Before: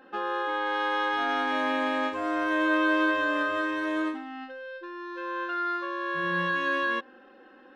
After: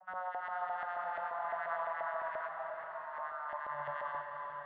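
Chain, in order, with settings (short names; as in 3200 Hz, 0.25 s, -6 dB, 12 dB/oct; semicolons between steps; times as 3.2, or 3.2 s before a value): vocoder on a gliding note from F#3, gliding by -5 st; Chebyshev band-stop 200–570 Hz, order 4; tilt +2 dB/oct; LFO band-pass saw up 5.1 Hz 660–2000 Hz; in parallel at -2.5 dB: negative-ratio compressor -43 dBFS, ratio -1; on the sum: LPF 4300 Hz 24 dB/oct; bell 2500 Hz -12.5 dB 2.2 oct; flutter echo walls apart 10.3 m, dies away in 0.36 s; granular stretch 0.6×, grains 0.181 s; reverb RT60 5.6 s, pre-delay 0.248 s, DRR 3 dB; gain +1 dB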